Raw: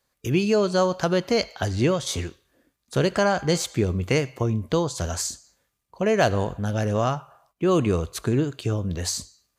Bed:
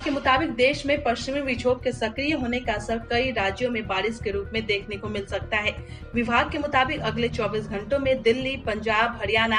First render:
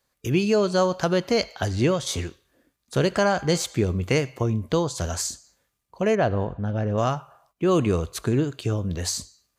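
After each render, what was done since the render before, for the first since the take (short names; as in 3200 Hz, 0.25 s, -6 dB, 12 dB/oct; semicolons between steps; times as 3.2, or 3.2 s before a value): 6.15–6.98 tape spacing loss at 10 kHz 31 dB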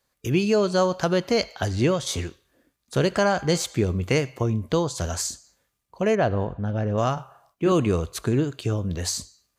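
7.14–7.72 doubler 31 ms -4.5 dB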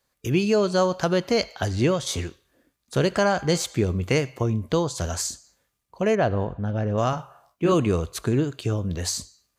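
7.11–7.74 doubler 18 ms -6 dB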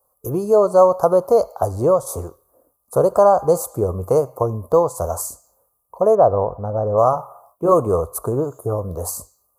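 EQ curve 100 Hz 0 dB, 230 Hz -5 dB, 350 Hz 0 dB, 500 Hz +11 dB, 1200 Hz +9 dB, 1800 Hz -26 dB, 3100 Hz -29 dB, 4700 Hz -13 dB, 6900 Hz -4 dB, 11000 Hz +14 dB; 8.53–8.75 spectral repair 1600–8500 Hz both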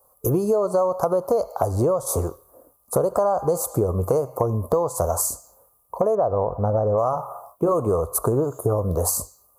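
in parallel at +2 dB: limiter -12.5 dBFS, peak gain reduction 10 dB; on the sum: compressor 6:1, threshold -18 dBFS, peak gain reduction 13 dB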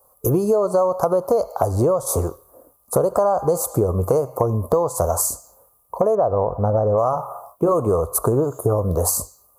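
gain +2.5 dB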